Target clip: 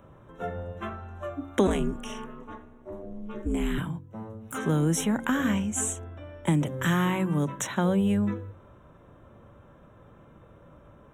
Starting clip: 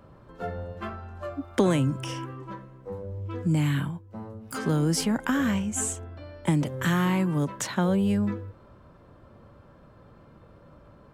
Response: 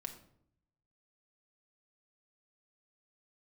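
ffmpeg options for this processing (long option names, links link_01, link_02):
-filter_complex "[0:a]asettb=1/sr,asplit=3[link_01][link_02][link_03];[link_01]atrim=end=1.674[link_04];[link_02]atrim=start=1.67:end=3.78,asetpts=PTS-STARTPTS,afade=type=in:duration=0.004:curve=qsin,afade=type=out:start_time=2.106:duration=0.004:curve=qsin,aeval=exprs='val(0)*sin(2*PI*110*n/s)':channel_layout=same[link_05];[link_03]atrim=start=3.776[link_06];[link_04][link_05]acrossfade=duration=0.004:curve1=hsin:curve2=qsin[link_07];[link_07][link_06]acrossfade=duration=0.004:curve1=qsin:curve2=hsin,asuperstop=centerf=4700:order=20:qfactor=3.1,bandreject=frequency=46.29:width_type=h:width=4,bandreject=frequency=92.58:width_type=h:width=4,bandreject=frequency=138.87:width_type=h:width=4,bandreject=frequency=185.16:width_type=h:width=4,bandreject=frequency=231.45:width_type=h:width=4,bandreject=frequency=277.74:width_type=h:width=4"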